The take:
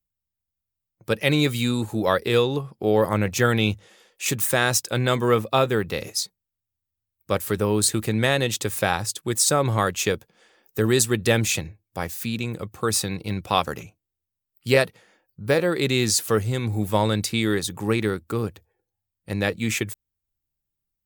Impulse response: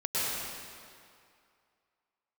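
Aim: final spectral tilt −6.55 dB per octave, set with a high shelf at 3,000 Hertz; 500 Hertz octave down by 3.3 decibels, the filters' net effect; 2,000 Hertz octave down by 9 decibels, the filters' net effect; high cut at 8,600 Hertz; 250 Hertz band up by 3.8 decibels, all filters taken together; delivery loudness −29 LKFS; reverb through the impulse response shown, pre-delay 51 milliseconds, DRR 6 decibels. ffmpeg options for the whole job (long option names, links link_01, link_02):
-filter_complex "[0:a]lowpass=8600,equalizer=frequency=250:width_type=o:gain=6.5,equalizer=frequency=500:width_type=o:gain=-5.5,equalizer=frequency=2000:width_type=o:gain=-8.5,highshelf=frequency=3000:gain=-8.5,asplit=2[link_01][link_02];[1:a]atrim=start_sample=2205,adelay=51[link_03];[link_02][link_03]afir=irnorm=-1:irlink=0,volume=-15.5dB[link_04];[link_01][link_04]amix=inputs=2:normalize=0,volume=-5dB"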